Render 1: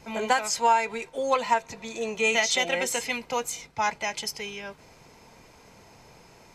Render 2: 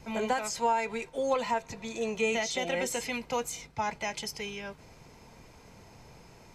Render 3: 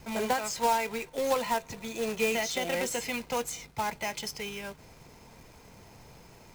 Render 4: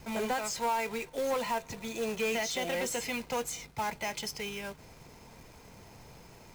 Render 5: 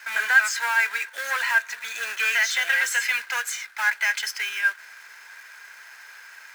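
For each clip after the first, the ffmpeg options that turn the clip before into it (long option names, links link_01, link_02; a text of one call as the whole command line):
ffmpeg -i in.wav -filter_complex "[0:a]lowshelf=frequency=210:gain=7.5,acrossover=split=730[link_01][link_02];[link_02]alimiter=limit=-23dB:level=0:latency=1:release=47[link_03];[link_01][link_03]amix=inputs=2:normalize=0,volume=-3dB" out.wav
ffmpeg -i in.wav -af "acrusher=bits=2:mode=log:mix=0:aa=0.000001" out.wav
ffmpeg -i in.wav -af "asoftclip=type=tanh:threshold=-25dB" out.wav
ffmpeg -i in.wav -af "highpass=frequency=1600:width_type=q:width=9.1,volume=7dB" out.wav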